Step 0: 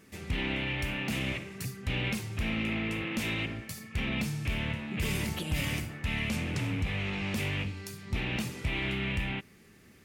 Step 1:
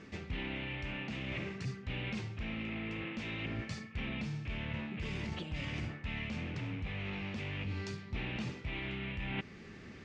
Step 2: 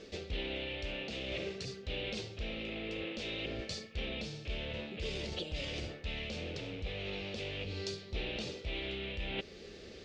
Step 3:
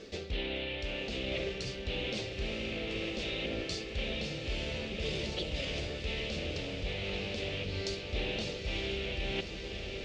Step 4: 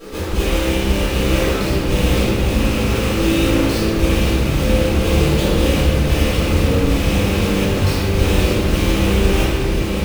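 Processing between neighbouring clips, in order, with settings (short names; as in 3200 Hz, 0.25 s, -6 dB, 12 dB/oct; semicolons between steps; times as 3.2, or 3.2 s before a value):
reverse; compressor 12:1, threshold -40 dBFS, peak gain reduction 15 dB; reverse; Bessel low-pass 4000 Hz, order 8; vocal rider within 3 dB 0.5 s; gain +4.5 dB
graphic EQ 125/250/500/1000/2000/4000 Hz -12/-8/+10/-11/-8/+8 dB; gain +4 dB
diffused feedback echo 0.922 s, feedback 66%, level -6.5 dB; gain +2.5 dB
half-waves squared off; reverb, pre-delay 4 ms, DRR -13.5 dB; gain -3.5 dB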